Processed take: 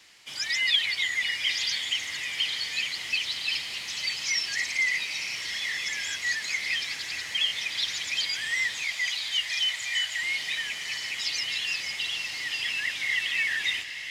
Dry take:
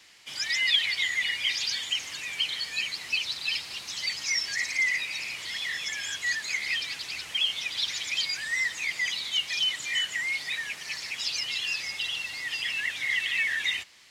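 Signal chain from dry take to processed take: 8.83–10.23 Chebyshev band-stop 110–620 Hz, order 3; on a send: diffused feedback echo 0.997 s, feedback 64%, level -9 dB

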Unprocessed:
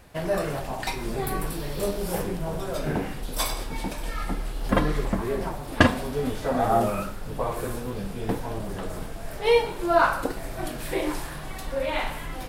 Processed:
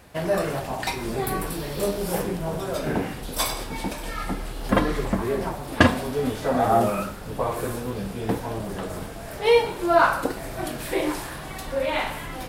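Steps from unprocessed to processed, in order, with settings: HPF 46 Hz 12 dB/oct; notches 50/100/150 Hz; in parallel at -3 dB: soft clip -11 dBFS, distortion -18 dB; on the sum: gain -2 dB

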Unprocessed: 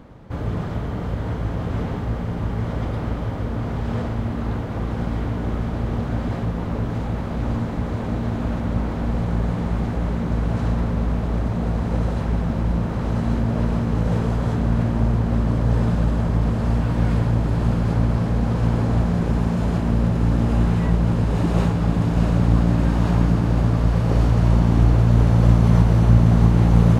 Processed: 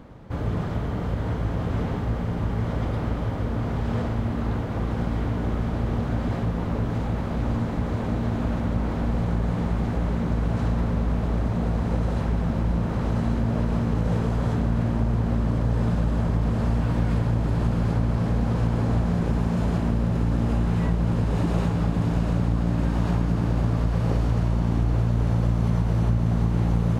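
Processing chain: compressor, threshold -17 dBFS, peak gain reduction 9 dB; gain -1 dB

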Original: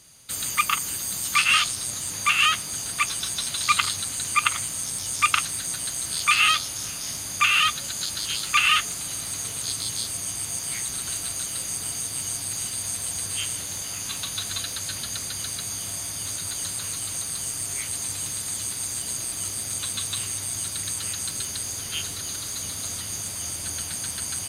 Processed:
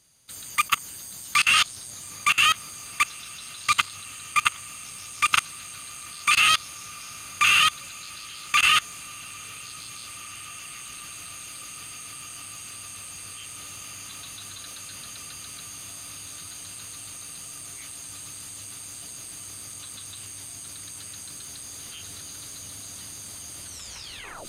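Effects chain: tape stop at the end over 0.82 s; diffused feedback echo 1.879 s, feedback 71%, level -10 dB; level quantiser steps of 22 dB; gain +4 dB

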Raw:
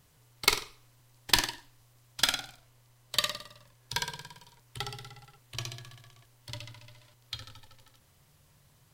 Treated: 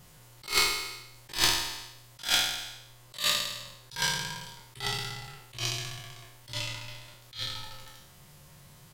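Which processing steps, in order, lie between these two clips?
spectral trails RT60 0.81 s; in parallel at +2 dB: compressor, threshold -37 dBFS, peak gain reduction 20 dB; on the sum: comb 5.6 ms, depth 38%; attack slew limiter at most 200 dB/s

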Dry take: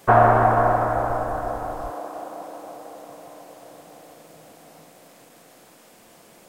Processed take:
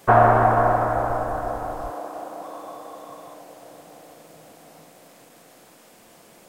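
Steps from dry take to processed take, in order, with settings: 2.44–3.34 small resonant body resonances 1100/3500 Hz, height 13 dB

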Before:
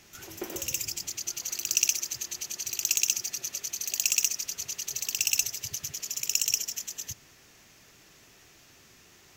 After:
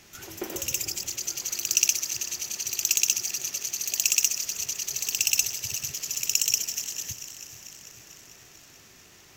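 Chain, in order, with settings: regenerating reverse delay 0.222 s, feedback 76%, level -14 dB; gain +2.5 dB

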